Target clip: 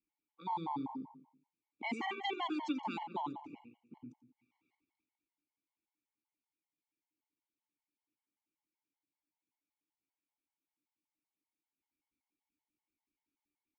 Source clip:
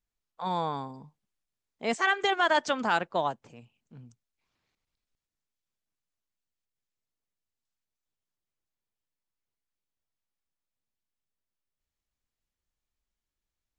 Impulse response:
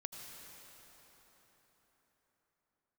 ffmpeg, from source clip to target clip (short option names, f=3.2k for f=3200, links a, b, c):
-filter_complex "[0:a]asplit=3[a][b][c];[a]bandpass=f=300:t=q:w=8,volume=0dB[d];[b]bandpass=f=870:t=q:w=8,volume=-6dB[e];[c]bandpass=f=2.24k:t=q:w=8,volume=-9dB[f];[d][e][f]amix=inputs=3:normalize=0,acrossover=split=170|3000[g][h][i];[h]acompressor=threshold=-49dB:ratio=6[j];[g][j][i]amix=inputs=3:normalize=0,asplit=2[k][l];[l]adelay=88,lowpass=f=2.9k:p=1,volume=-9dB,asplit=2[m][n];[n]adelay=88,lowpass=f=2.9k:p=1,volume=0.47,asplit=2[o][p];[p]adelay=88,lowpass=f=2.9k:p=1,volume=0.47,asplit=2[q][r];[r]adelay=88,lowpass=f=2.9k:p=1,volume=0.47,asplit=2[s][t];[t]adelay=88,lowpass=f=2.9k:p=1,volume=0.47[u];[m][o][q][s][u]amix=inputs=5:normalize=0[v];[k][v]amix=inputs=2:normalize=0,afftfilt=real='re*gt(sin(2*PI*5.2*pts/sr)*(1-2*mod(floor(b*sr/1024/560),2)),0)':imag='im*gt(sin(2*PI*5.2*pts/sr)*(1-2*mod(floor(b*sr/1024/560),2)),0)':win_size=1024:overlap=0.75,volume=14.5dB"